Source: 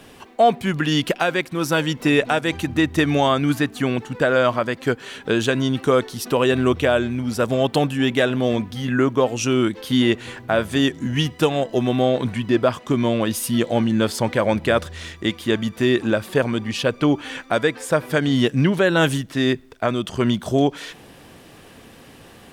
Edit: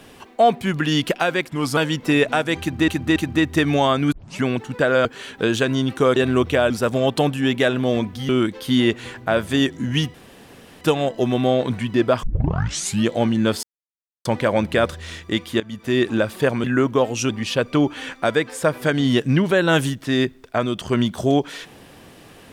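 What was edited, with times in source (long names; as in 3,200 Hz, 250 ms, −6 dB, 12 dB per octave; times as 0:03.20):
0:01.49–0:01.74: play speed 89%
0:02.57–0:02.85: repeat, 3 plays
0:03.53: tape start 0.31 s
0:04.46–0:04.92: remove
0:06.03–0:06.46: remove
0:07.00–0:07.27: remove
0:08.86–0:09.51: move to 0:16.57
0:11.36: splice in room tone 0.67 s
0:12.78: tape start 0.84 s
0:14.18: splice in silence 0.62 s
0:15.53–0:15.95: fade in, from −17.5 dB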